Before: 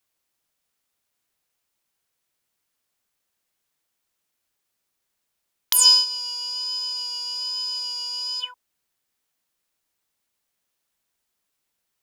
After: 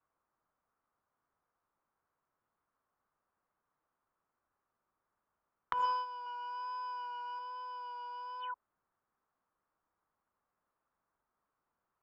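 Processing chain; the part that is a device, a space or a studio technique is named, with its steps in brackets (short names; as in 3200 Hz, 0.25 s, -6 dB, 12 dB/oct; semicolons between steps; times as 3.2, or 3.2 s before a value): overdriven synthesiser ladder filter (soft clip -10.5 dBFS, distortion -16 dB; ladder low-pass 1400 Hz, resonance 50%); 6.26–7.39 comb 2.8 ms, depth 89%; gain +8 dB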